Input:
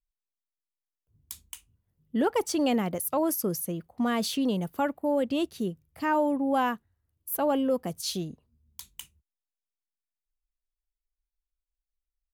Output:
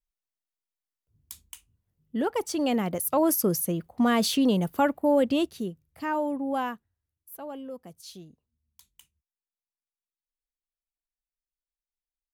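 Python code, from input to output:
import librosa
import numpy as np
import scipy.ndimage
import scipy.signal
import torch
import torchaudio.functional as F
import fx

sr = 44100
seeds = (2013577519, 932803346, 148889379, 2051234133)

y = fx.gain(x, sr, db=fx.line((2.49, -2.0), (3.33, 4.5), (5.29, 4.5), (5.71, -3.0), (6.57, -3.0), (7.31, -13.0)))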